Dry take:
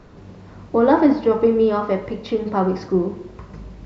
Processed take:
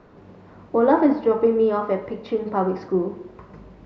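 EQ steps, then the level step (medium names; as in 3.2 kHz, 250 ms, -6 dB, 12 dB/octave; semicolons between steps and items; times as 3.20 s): low-pass 1.6 kHz 6 dB/octave; bass shelf 160 Hz -12 dB; 0.0 dB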